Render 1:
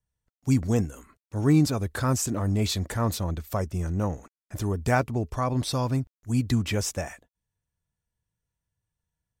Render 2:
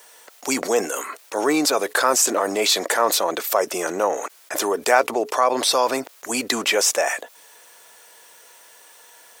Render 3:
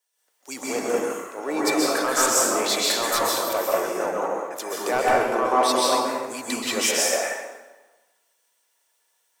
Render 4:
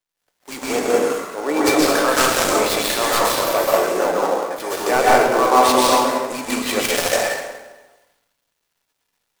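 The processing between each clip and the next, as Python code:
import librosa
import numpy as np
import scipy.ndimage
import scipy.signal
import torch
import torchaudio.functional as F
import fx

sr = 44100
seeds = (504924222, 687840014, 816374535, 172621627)

y1 = scipy.signal.sosfilt(scipy.signal.butter(4, 440.0, 'highpass', fs=sr, output='sos'), x)
y1 = fx.env_flatten(y1, sr, amount_pct=50)
y1 = y1 * 10.0 ** (7.5 / 20.0)
y2 = np.clip(y1, -10.0 ** (-9.5 / 20.0), 10.0 ** (-9.5 / 20.0))
y2 = fx.rev_plate(y2, sr, seeds[0], rt60_s=1.8, hf_ratio=0.65, predelay_ms=115, drr_db=-5.0)
y2 = fx.band_widen(y2, sr, depth_pct=70)
y2 = y2 * 10.0 ** (-8.0 / 20.0)
y3 = fx.dead_time(y2, sr, dead_ms=0.085)
y3 = fx.room_shoebox(y3, sr, seeds[1], volume_m3=120.0, walls='mixed', distance_m=0.31)
y3 = y3 * 10.0 ** (6.0 / 20.0)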